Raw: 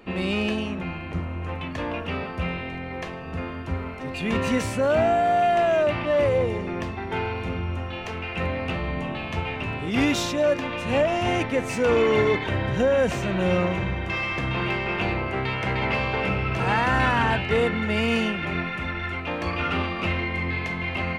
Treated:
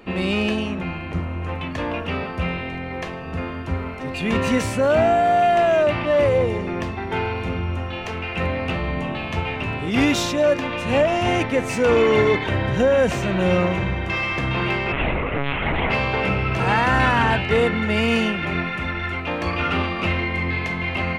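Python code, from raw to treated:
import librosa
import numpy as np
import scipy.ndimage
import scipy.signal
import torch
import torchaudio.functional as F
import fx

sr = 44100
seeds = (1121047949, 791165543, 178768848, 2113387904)

y = fx.lpc_monotone(x, sr, seeds[0], pitch_hz=140.0, order=10, at=(14.92, 15.9))
y = y * librosa.db_to_amplitude(3.5)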